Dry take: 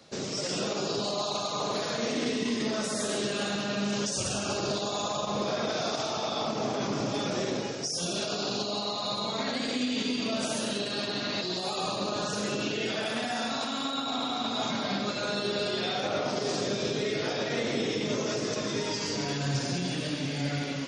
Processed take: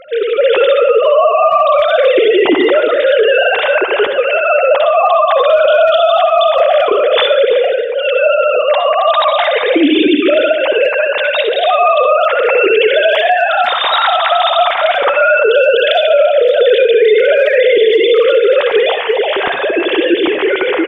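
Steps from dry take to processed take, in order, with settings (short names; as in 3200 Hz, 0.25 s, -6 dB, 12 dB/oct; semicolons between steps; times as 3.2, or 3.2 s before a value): sine-wave speech; 15.91–16.54 fixed phaser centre 420 Hz, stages 4; speakerphone echo 0.34 s, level -15 dB; on a send at -8 dB: reverb RT60 0.40 s, pre-delay 60 ms; on the sum: maximiser +22 dB; gain -1 dB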